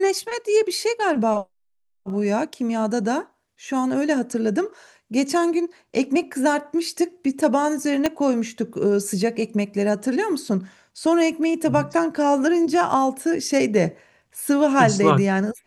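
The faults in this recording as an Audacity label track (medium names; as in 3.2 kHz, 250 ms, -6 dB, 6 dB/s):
8.060000	8.060000	pop -7 dBFS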